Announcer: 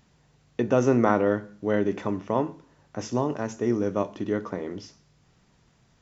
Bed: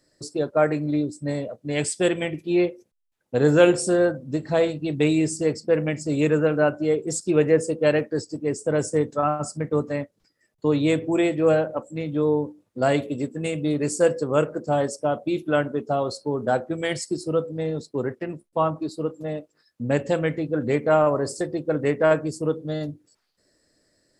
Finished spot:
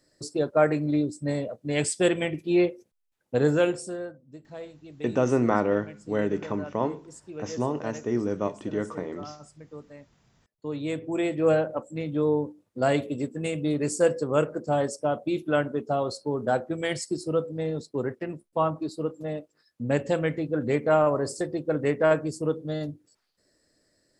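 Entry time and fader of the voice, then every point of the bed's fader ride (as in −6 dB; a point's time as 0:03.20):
4.45 s, −2.0 dB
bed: 0:03.33 −1 dB
0:04.20 −19.5 dB
0:10.06 −19.5 dB
0:11.49 −2.5 dB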